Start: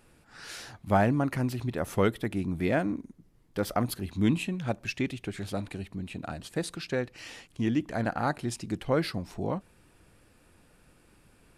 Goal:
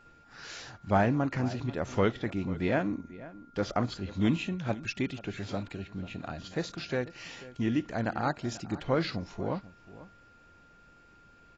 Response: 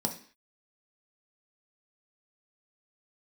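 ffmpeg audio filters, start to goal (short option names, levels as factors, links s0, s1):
-filter_complex "[0:a]asplit=2[s0][s1];[s1]adelay=489.8,volume=0.141,highshelf=f=4000:g=-11[s2];[s0][s2]amix=inputs=2:normalize=0,aeval=exprs='val(0)+0.00158*sin(2*PI*1400*n/s)':c=same,volume=0.841" -ar 16000 -c:a aac -b:a 24k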